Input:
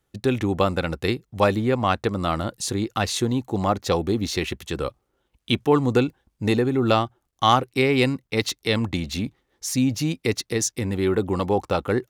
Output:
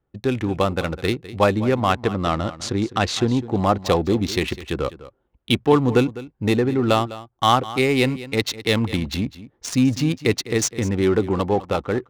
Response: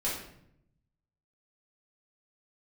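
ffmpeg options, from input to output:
-filter_complex "[0:a]adynamicsmooth=sensitivity=5.5:basefreq=1.5k,asplit=3[a][b][c];[a]afade=t=out:st=1.92:d=0.02[d];[b]lowpass=8.2k,afade=t=in:st=1.92:d=0.02,afade=t=out:st=3.35:d=0.02[e];[c]afade=t=in:st=3.35:d=0.02[f];[d][e][f]amix=inputs=3:normalize=0,aecho=1:1:204:0.158,dynaudnorm=f=110:g=17:m=4dB"

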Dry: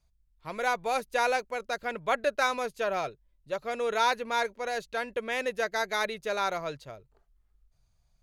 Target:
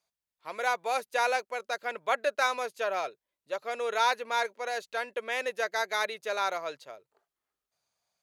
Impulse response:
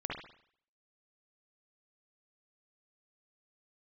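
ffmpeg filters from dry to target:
-af "highpass=430"

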